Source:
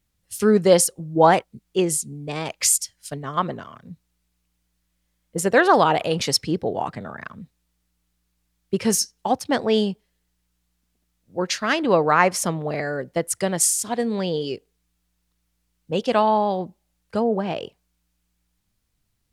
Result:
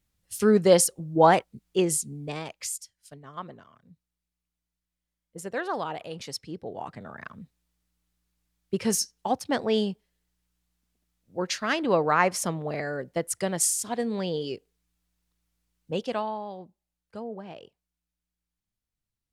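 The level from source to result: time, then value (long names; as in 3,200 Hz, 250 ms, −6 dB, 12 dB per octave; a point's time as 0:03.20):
0:02.26 −3 dB
0:02.68 −15 dB
0:06.46 −15 dB
0:07.26 −5 dB
0:15.92 −5 dB
0:16.38 −15.5 dB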